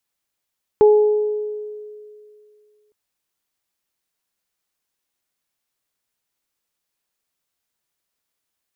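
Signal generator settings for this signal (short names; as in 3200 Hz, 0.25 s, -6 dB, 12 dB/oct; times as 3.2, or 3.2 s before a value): additive tone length 2.11 s, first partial 422 Hz, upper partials -12.5 dB, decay 2.38 s, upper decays 1.05 s, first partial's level -7 dB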